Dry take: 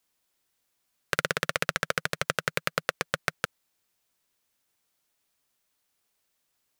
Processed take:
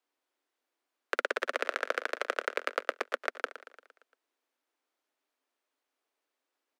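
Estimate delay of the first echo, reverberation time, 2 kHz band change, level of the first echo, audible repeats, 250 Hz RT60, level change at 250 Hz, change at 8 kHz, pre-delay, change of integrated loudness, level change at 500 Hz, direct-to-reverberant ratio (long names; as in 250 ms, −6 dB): 115 ms, no reverb audible, −3.5 dB, −14.0 dB, 5, no reverb audible, −7.0 dB, −13.5 dB, no reverb audible, −4.0 dB, −0.5 dB, no reverb audible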